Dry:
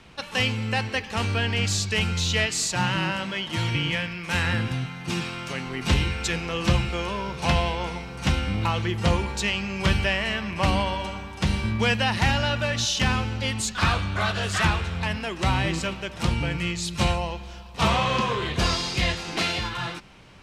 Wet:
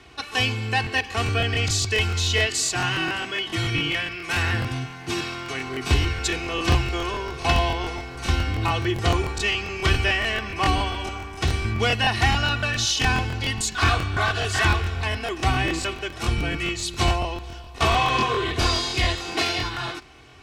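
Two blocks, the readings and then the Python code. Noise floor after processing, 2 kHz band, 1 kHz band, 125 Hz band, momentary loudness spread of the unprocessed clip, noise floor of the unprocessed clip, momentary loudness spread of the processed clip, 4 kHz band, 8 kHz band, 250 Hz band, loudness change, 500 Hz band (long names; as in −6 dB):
−38 dBFS, +2.5 dB, +2.5 dB, +0.5 dB, 7 LU, −40 dBFS, 8 LU, +2.5 dB, +2.0 dB, −1.5 dB, +1.5 dB, +1.5 dB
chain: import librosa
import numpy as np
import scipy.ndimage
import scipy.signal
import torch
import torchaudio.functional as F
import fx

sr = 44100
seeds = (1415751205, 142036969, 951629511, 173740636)

y = scipy.signal.sosfilt(scipy.signal.butter(2, 48.0, 'highpass', fs=sr, output='sos'), x)
y = y + 0.85 * np.pad(y, (int(2.7 * sr / 1000.0), 0))[:len(y)]
y = fx.buffer_crackle(y, sr, first_s=0.82, period_s=0.14, block=1024, kind='repeat')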